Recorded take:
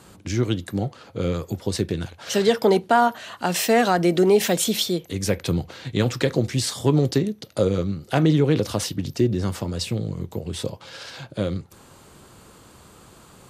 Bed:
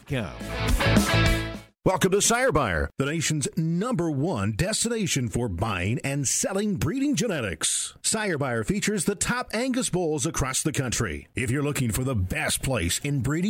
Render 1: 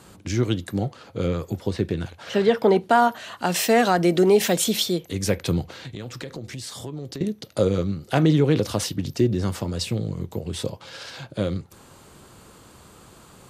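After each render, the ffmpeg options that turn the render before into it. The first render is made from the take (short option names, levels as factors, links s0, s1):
-filter_complex "[0:a]asettb=1/sr,asplit=3[s0][s1][s2];[s0]atrim=end=1.264[s3];[s1]atrim=start=1.26:end=2.86,asetpts=PTS-STARTPTS,afade=t=in:d=0.004:c=qsin,afade=t=out:st=1.596:d=0.004:c=qsin,acrossover=split=3300[s4][s5];[s5]acompressor=threshold=0.00447:ratio=4:attack=1:release=60[s6];[s4][s6]amix=inputs=2:normalize=0[s7];[s2]atrim=start=2.856[s8];[s3][s7]acrossfade=d=0.004:c1=hsin:c2=qsin[s9];[s9][s8]acrossfade=d=0.004:c1=qsin:c2=hsin,asettb=1/sr,asplit=3[s10][s11][s12];[s10]atrim=end=5.744[s13];[s11]atrim=start=5.74:end=7.21,asetpts=PTS-STARTPTS,afade=t=in:d=0.004:c=qsin,afade=t=out:st=1.466:d=0.004:c=qsin,acompressor=threshold=0.0224:ratio=4:attack=3.2:release=140:knee=1:detection=peak[s14];[s12]atrim=start=7.206[s15];[s13][s14]acrossfade=d=0.004:c1=hsin:c2=qsin[s16];[s16][s15]acrossfade=d=0.004:c1=qsin:c2=hsin"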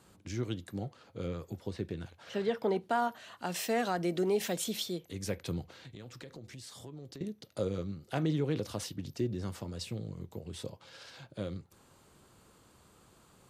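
-af "volume=0.224"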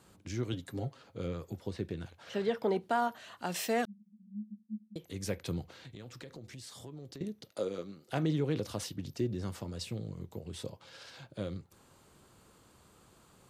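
-filter_complex "[0:a]asettb=1/sr,asplit=3[s0][s1][s2];[s0]atrim=end=0.524[s3];[s1]atrim=start=0.52:end=1.02,asetpts=PTS-STARTPTS,afade=t=in:d=0.004:c=qsin,afade=t=out:st=0.496:d=0.004:c=qsin,aecho=1:1:7.4:0.65,atrim=end_sample=22050[s4];[s2]atrim=start=1.016[s5];[s3][s4]acrossfade=d=0.004:c1=hsin:c2=qsin[s6];[s6][s5]acrossfade=d=0.004:c1=qsin:c2=hsin,asettb=1/sr,asplit=3[s7][s8][s9];[s7]atrim=end=3.854[s10];[s8]atrim=start=3.85:end=4.96,asetpts=PTS-STARTPTS,afade=t=in:d=0.004:c=qsin,afade=t=out:st=1.106:d=0.004:c=qsin,asuperpass=centerf=210:order=8:qfactor=7.9[s11];[s9]atrim=start=4.956[s12];[s10][s11]acrossfade=d=0.004:c1=hsin:c2=qsin[s13];[s13][s12]acrossfade=d=0.004:c1=qsin:c2=hsin,asettb=1/sr,asplit=3[s14][s15][s16];[s14]atrim=end=7.514[s17];[s15]atrim=start=7.51:end=8.09,asetpts=PTS-STARTPTS,afade=t=in:d=0.004:c=qsin,afade=t=out:st=0.576:d=0.004:c=qsin,highpass=280[s18];[s16]atrim=start=8.086[s19];[s17][s18]acrossfade=d=0.004:c1=hsin:c2=qsin[s20];[s20][s19]acrossfade=d=0.004:c1=qsin:c2=hsin"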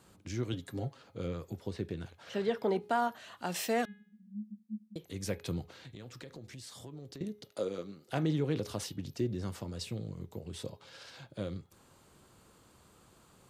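-af "bandreject=f=416.8:t=h:w=4,bandreject=f=833.6:t=h:w=4,bandreject=f=1250.4:t=h:w=4,bandreject=f=1667.2:t=h:w=4,bandreject=f=2084:t=h:w=4,bandreject=f=2500.8:t=h:w=4,bandreject=f=2917.6:t=h:w=4,bandreject=f=3334.4:t=h:w=4,bandreject=f=3751.2:t=h:w=4,bandreject=f=4168:t=h:w=4"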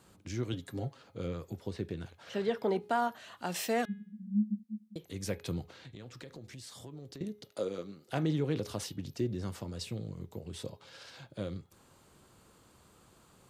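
-filter_complex "[0:a]asplit=3[s0][s1][s2];[s0]afade=t=out:st=3.88:d=0.02[s3];[s1]asubboost=boost=11:cutoff=200,afade=t=in:st=3.88:d=0.02,afade=t=out:st=4.63:d=0.02[s4];[s2]afade=t=in:st=4.63:d=0.02[s5];[s3][s4][s5]amix=inputs=3:normalize=0,asettb=1/sr,asplit=3[s6][s7][s8];[s6]atrim=end=5.714[s9];[s7]atrim=start=5.71:end=6.19,asetpts=PTS-STARTPTS,afade=t=in:d=0.004:c=qsin,afade=t=out:st=0.476:d=0.004:c=qsin,highshelf=f=12000:g=-10.5[s10];[s8]atrim=start=6.186[s11];[s9][s10]acrossfade=d=0.004:c1=hsin:c2=qsin[s12];[s12][s11]acrossfade=d=0.004:c1=qsin:c2=hsin"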